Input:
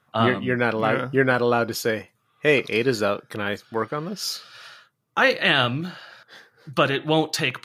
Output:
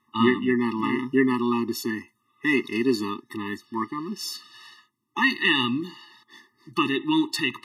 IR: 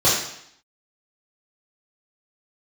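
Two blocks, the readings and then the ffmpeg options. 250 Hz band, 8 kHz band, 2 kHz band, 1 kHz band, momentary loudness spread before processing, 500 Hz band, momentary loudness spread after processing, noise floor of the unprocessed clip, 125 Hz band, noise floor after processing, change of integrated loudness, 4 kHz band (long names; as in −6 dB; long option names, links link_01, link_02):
+3.5 dB, −4.5 dB, −3.5 dB, −4.5 dB, 11 LU, −7.0 dB, 12 LU, −69 dBFS, −9.0 dB, −72 dBFS, −2.5 dB, −2.5 dB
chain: -af "lowshelf=frequency=200:width_type=q:width=3:gain=-6,afftfilt=real='re*eq(mod(floor(b*sr/1024/430),2),0)':imag='im*eq(mod(floor(b*sr/1024/430),2),0)':win_size=1024:overlap=0.75"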